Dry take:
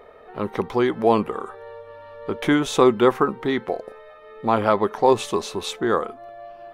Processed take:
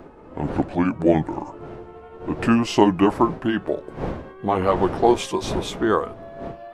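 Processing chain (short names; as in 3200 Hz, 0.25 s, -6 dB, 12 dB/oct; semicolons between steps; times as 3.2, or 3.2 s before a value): gliding pitch shift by -6.5 st ending unshifted; wind noise 470 Hz -36 dBFS; gain +1.5 dB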